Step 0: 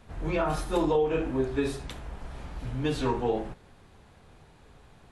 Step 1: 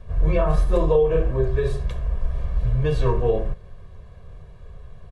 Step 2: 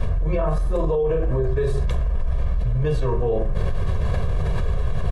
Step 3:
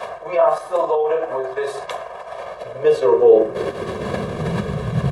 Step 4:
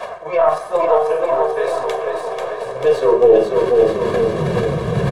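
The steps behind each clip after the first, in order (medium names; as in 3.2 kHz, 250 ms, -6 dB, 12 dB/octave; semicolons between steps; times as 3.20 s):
tilt EQ -2.5 dB/octave; comb 1.8 ms, depth 96%
dynamic bell 3.2 kHz, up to -4 dB, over -47 dBFS, Q 0.8; peak limiter -17 dBFS, peak gain reduction 10 dB; level flattener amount 100%
high-pass sweep 720 Hz -> 150 Hz, 2.30–5.02 s; trim +6 dB
tracing distortion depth 0.037 ms; flange 1.2 Hz, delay 2.8 ms, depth 5.7 ms, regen +69%; on a send: bouncing-ball echo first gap 490 ms, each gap 0.9×, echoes 5; on the sum: trim +5.5 dB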